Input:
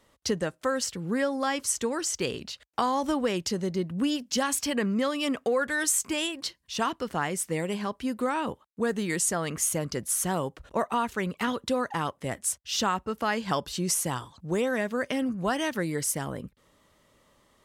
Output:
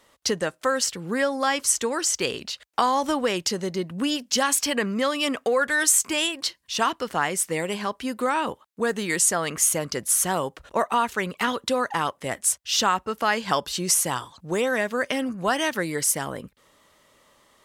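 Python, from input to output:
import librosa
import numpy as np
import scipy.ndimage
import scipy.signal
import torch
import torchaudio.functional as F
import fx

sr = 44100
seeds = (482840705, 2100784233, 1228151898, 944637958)

y = fx.low_shelf(x, sr, hz=330.0, db=-10.0)
y = F.gain(torch.from_numpy(y), 6.5).numpy()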